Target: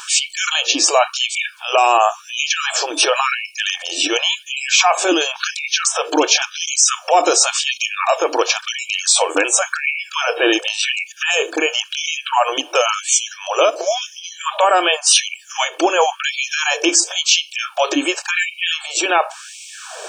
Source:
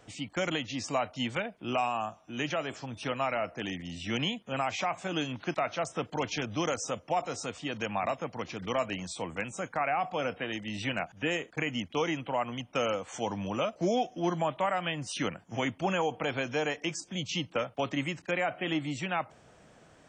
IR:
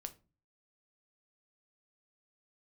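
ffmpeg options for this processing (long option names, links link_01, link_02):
-filter_complex "[0:a]asplit=2[link_01][link_02];[link_02]acompressor=threshold=-40dB:ratio=20,volume=2dB[link_03];[link_01][link_03]amix=inputs=2:normalize=0,asuperstop=centerf=2000:order=12:qfactor=5.7,bass=frequency=250:gain=15,treble=frequency=4000:gain=7,asplit=2[link_04][link_05];[1:a]atrim=start_sample=2205[link_06];[link_05][link_06]afir=irnorm=-1:irlink=0,volume=-2.5dB[link_07];[link_04][link_07]amix=inputs=2:normalize=0,alimiter=level_in=18.5dB:limit=-1dB:release=50:level=0:latency=1,afftfilt=real='re*gte(b*sr/1024,290*pow(2000/290,0.5+0.5*sin(2*PI*0.93*pts/sr)))':imag='im*gte(b*sr/1024,290*pow(2000/290,0.5+0.5*sin(2*PI*0.93*pts/sr)))':win_size=1024:overlap=0.75,volume=-1dB"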